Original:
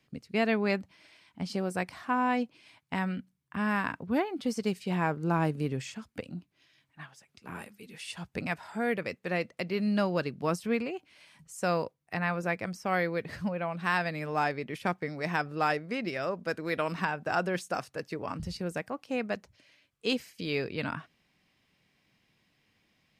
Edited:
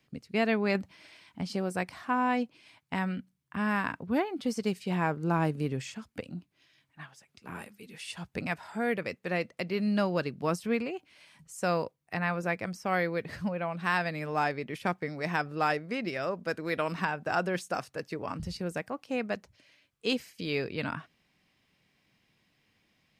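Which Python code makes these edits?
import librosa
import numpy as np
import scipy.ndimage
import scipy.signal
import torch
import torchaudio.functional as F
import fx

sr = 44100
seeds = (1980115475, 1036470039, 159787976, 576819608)

y = fx.edit(x, sr, fx.clip_gain(start_s=0.75, length_s=0.66, db=4.0), tone=tone)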